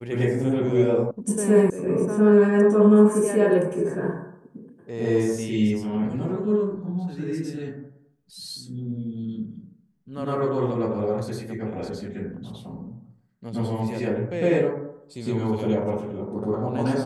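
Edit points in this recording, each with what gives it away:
0:01.11: cut off before it has died away
0:01.70: cut off before it has died away

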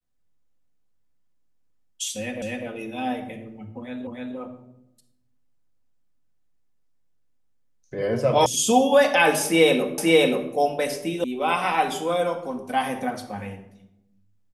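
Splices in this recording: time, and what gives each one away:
0:02.42: the same again, the last 0.25 s
0:04.07: the same again, the last 0.3 s
0:08.46: cut off before it has died away
0:09.98: the same again, the last 0.53 s
0:11.24: cut off before it has died away

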